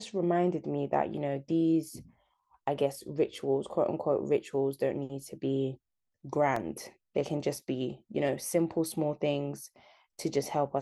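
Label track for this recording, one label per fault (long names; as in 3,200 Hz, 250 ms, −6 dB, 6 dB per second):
6.560000	6.560000	drop-out 3.8 ms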